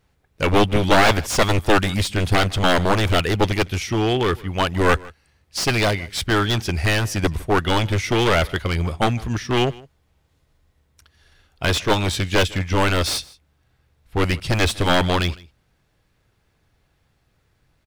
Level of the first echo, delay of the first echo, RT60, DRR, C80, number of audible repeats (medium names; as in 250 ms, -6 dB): -22.5 dB, 156 ms, no reverb, no reverb, no reverb, 1